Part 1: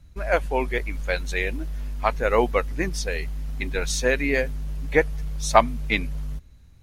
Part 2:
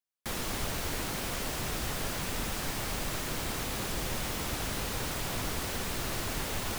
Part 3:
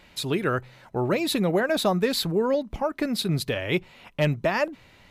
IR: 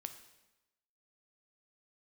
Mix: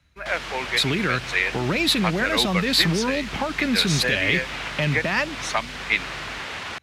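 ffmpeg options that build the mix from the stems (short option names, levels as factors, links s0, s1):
-filter_complex "[0:a]dynaudnorm=f=250:g=11:m=3.76,volume=0.299[s0];[1:a]adynamicsmooth=sensitivity=2.5:basefreq=6200,volume=0.531[s1];[2:a]equalizer=f=180:t=o:w=1.6:g=7.5,alimiter=limit=0.141:level=0:latency=1,adelay=600,volume=1[s2];[s0][s1][s2]amix=inputs=3:normalize=0,acrossover=split=290|3000[s3][s4][s5];[s4]acompressor=threshold=0.0251:ratio=6[s6];[s3][s6][s5]amix=inputs=3:normalize=0,highpass=68,equalizer=f=2100:t=o:w=3:g=15"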